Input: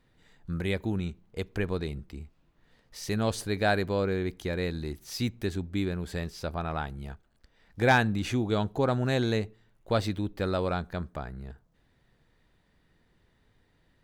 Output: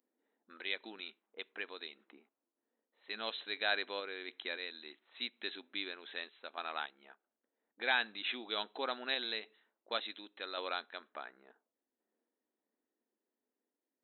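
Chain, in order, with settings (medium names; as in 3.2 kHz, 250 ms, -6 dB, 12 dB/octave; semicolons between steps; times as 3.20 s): level-controlled noise filter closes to 340 Hz, open at -26.5 dBFS; random-step tremolo; in parallel at +1.5 dB: compression, threshold -44 dBFS, peak gain reduction 20.5 dB; on the sum: brick-wall FIR band-pass 210–4100 Hz; differentiator; trim +9.5 dB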